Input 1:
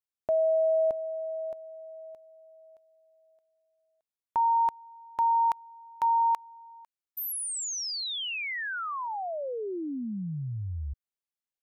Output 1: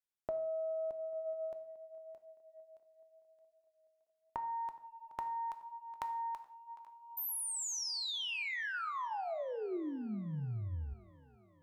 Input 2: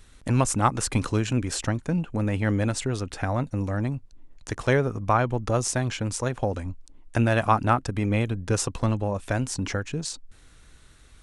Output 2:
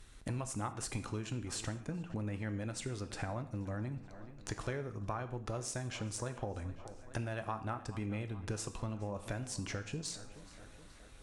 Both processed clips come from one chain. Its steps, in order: tape echo 0.423 s, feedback 66%, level -21 dB, low-pass 5000 Hz; compressor 6:1, threshold -32 dBFS; added harmonics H 2 -21 dB, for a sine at -17.5 dBFS; non-linear reverb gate 0.21 s falling, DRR 8.5 dB; gain -4.5 dB

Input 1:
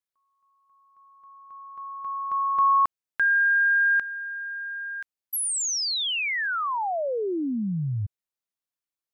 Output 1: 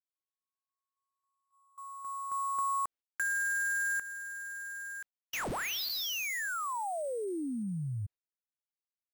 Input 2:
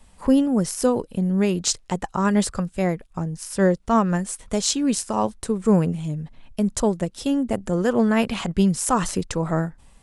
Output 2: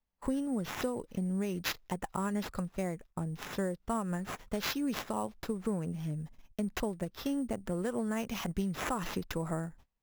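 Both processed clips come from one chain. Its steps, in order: gate -41 dBFS, range -27 dB; compressor, threshold -22 dBFS; sample-rate reducer 8900 Hz, jitter 0%; gain -8 dB

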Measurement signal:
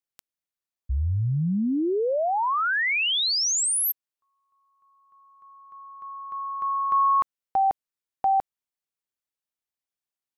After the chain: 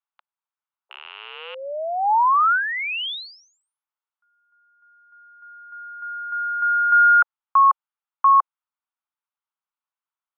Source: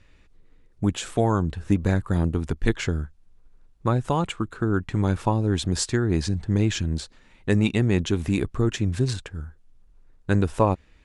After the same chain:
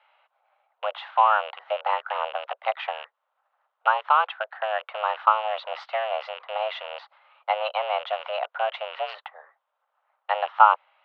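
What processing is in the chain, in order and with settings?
rattling part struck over -27 dBFS, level -23 dBFS; mistuned SSB +320 Hz 260–3200 Hz; band shelf 1100 Hz +10 dB 1 oct; gain -2.5 dB

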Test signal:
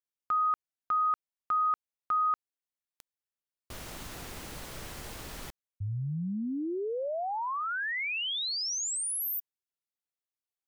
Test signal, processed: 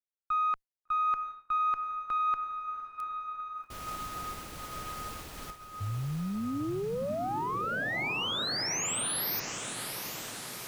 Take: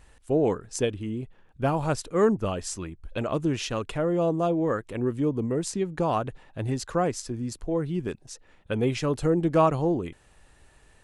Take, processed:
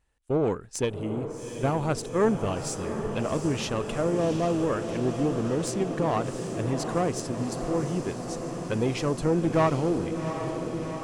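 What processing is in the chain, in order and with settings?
one diode to ground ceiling -20.5 dBFS; diffused feedback echo 0.748 s, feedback 76%, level -8 dB; expander -38 dBFS, range -18 dB

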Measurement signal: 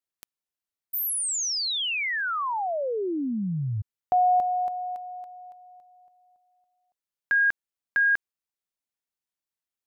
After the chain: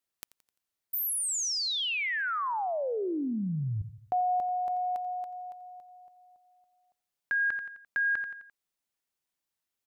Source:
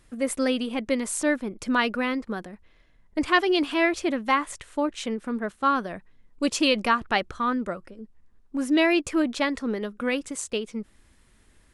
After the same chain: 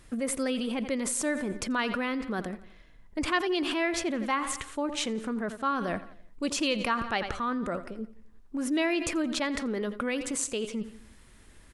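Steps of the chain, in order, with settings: feedback echo 86 ms, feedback 48%, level -18 dB; in parallel at +2 dB: negative-ratio compressor -34 dBFS, ratio -1; on the sum: gain -7.5 dB

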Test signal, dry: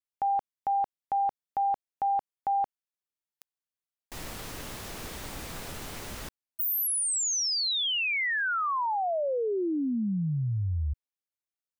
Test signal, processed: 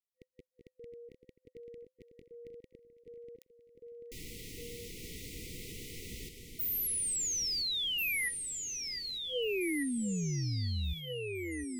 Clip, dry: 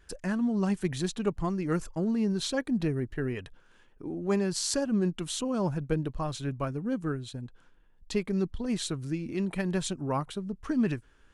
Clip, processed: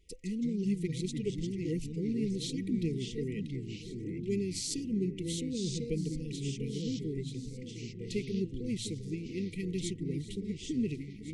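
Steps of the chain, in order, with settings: echo with dull and thin repeats by turns 0.708 s, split 2100 Hz, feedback 69%, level -13 dB; echoes that change speed 0.143 s, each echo -3 st, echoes 3, each echo -6 dB; FFT band-reject 510–1900 Hz; gain -5.5 dB

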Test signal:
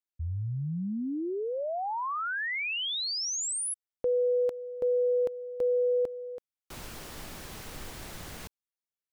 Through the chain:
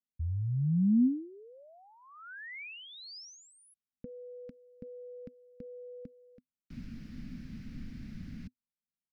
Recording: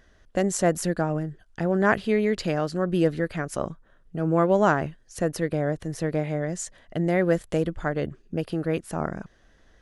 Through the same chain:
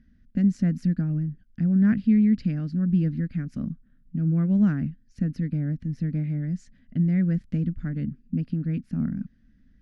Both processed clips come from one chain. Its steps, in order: EQ curve 110 Hz 0 dB, 250 Hz +10 dB, 360 Hz -17 dB, 950 Hz -28 dB, 1500 Hz -14 dB, 2300 Hz -11 dB, 3300 Hz -18 dB, 5000 Hz -14 dB, 8100 Hz -30 dB

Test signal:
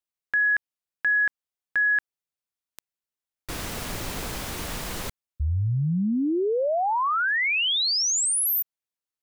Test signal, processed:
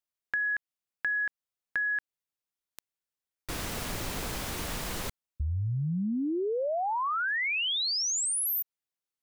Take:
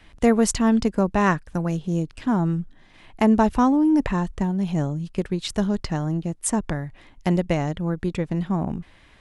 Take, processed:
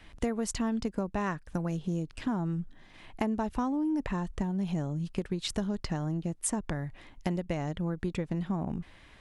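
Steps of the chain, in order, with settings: compressor 6:1, threshold -26 dBFS; gain -2 dB

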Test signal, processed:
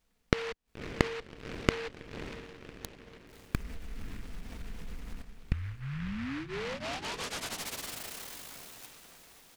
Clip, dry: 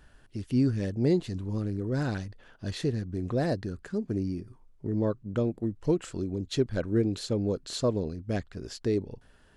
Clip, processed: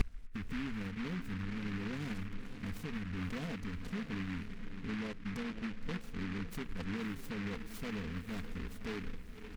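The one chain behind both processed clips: RIAA curve playback; comb 4.3 ms, depth 95%; in parallel at -2 dB: compressor, threshold -25 dBFS; on the sum: limiter -17 dBFS; flipped gate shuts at -30 dBFS, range -31 dB; on a send: diffused feedback echo 0.577 s, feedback 49%, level -10 dB; on the sum: noise-modulated delay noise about 1700 Hz, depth 0.23 ms; gain +14.5 dB

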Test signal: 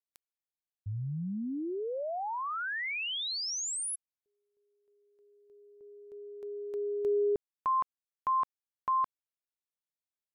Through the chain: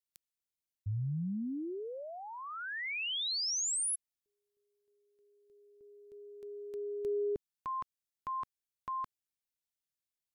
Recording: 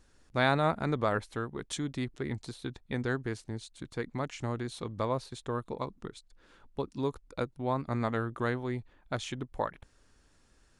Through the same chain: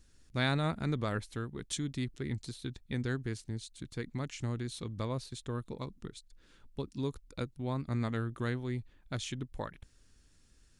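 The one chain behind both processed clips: bell 810 Hz -12 dB 2.4 oct; gain +2 dB

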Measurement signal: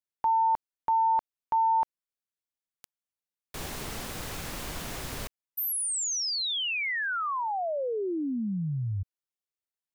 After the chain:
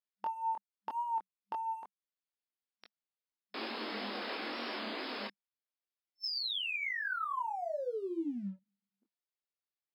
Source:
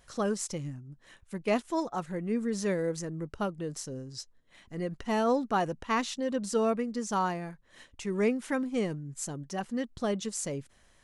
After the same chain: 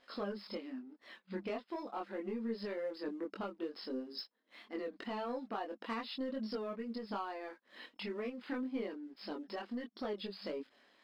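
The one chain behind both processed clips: FFT band-pass 200–5300 Hz; compressor 10:1, threshold -37 dBFS; sample leveller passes 1; chorus voices 4, 0.29 Hz, delay 23 ms, depth 3.7 ms; record warp 33 1/3 rpm, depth 100 cents; gain +1 dB

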